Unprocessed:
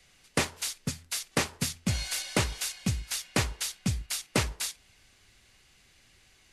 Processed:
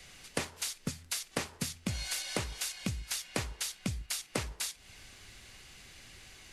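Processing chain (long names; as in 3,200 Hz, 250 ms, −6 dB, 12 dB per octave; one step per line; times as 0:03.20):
downward compressor 4 to 1, threshold −43 dBFS, peak gain reduction 18 dB
level +8 dB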